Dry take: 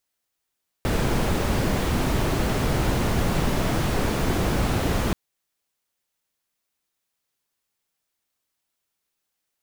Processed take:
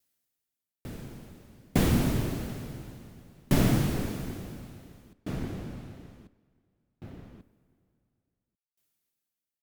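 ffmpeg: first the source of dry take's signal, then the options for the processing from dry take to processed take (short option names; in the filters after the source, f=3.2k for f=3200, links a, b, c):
-f lavfi -i "anoisesrc=c=brown:a=0.372:d=4.28:r=44100:seed=1"
-filter_complex "[0:a]equalizer=f=125:t=o:w=1:g=6,equalizer=f=250:t=o:w=1:g=6,equalizer=f=1k:t=o:w=1:g=-4,equalizer=f=16k:t=o:w=1:g=7,asplit=2[a][b];[b]adelay=1140,lowpass=f=3.5k:p=1,volume=-11dB,asplit=2[c][d];[d]adelay=1140,lowpass=f=3.5k:p=1,volume=0.26,asplit=2[e][f];[f]adelay=1140,lowpass=f=3.5k:p=1,volume=0.26[g];[c][e][g]amix=inputs=3:normalize=0[h];[a][h]amix=inputs=2:normalize=0,aeval=exprs='val(0)*pow(10,-39*if(lt(mod(0.57*n/s,1),2*abs(0.57)/1000),1-mod(0.57*n/s,1)/(2*abs(0.57)/1000),(mod(0.57*n/s,1)-2*abs(0.57)/1000)/(1-2*abs(0.57)/1000))/20)':c=same"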